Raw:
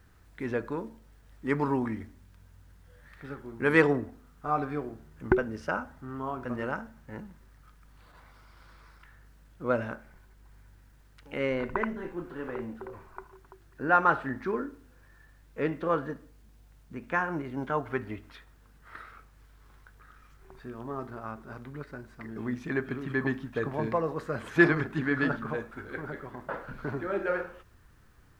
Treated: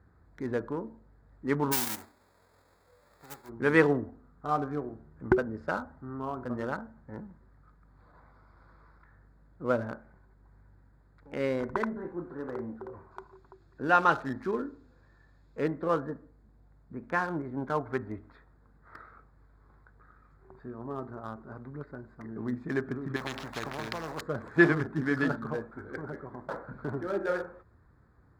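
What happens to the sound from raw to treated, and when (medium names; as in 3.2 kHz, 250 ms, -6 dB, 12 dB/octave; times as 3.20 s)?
1.71–3.48 s: formants flattened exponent 0.1
13.11–15.61 s: high-order bell 4.2 kHz +11 dB
23.16–24.21 s: spectrum-flattening compressor 4:1
whole clip: local Wiener filter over 15 samples; high-pass 56 Hz; peaking EQ 2.6 kHz -3.5 dB 0.76 oct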